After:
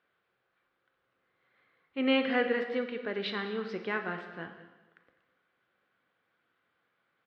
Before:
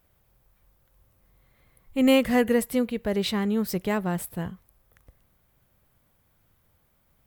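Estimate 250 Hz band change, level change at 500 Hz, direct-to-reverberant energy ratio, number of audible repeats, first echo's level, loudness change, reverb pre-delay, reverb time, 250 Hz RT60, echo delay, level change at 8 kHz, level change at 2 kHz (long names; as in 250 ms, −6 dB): −10.0 dB, −6.5 dB, 5.5 dB, 1, −17.5 dB, −6.5 dB, 5 ms, 1.2 s, 1.1 s, 203 ms, below −30 dB, −0.5 dB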